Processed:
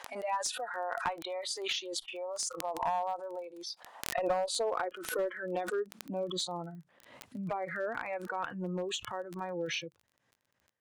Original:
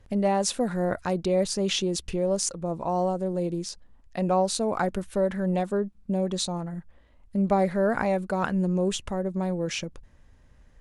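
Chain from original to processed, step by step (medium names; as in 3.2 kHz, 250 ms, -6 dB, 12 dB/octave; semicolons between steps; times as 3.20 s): spectral noise reduction 22 dB; frequency weighting A; compression 10:1, threshold -32 dBFS, peak gain reduction 12 dB; high-pass sweep 830 Hz -> 110 Hz, 3.68–7.28 s; one-sided clip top -27 dBFS; crackle 20 per s -49 dBFS; swell ahead of each attack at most 64 dB/s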